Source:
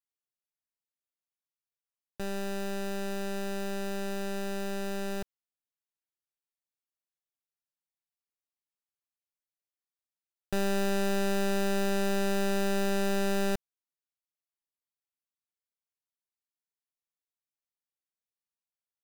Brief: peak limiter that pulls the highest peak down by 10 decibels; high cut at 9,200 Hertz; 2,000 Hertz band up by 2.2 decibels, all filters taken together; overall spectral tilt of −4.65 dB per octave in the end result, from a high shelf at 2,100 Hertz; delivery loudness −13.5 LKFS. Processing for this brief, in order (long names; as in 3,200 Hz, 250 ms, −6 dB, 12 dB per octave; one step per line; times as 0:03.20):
low-pass filter 9,200 Hz
parametric band 2,000 Hz +6.5 dB
high-shelf EQ 2,100 Hz −6.5 dB
level +26.5 dB
brickwall limiter −8 dBFS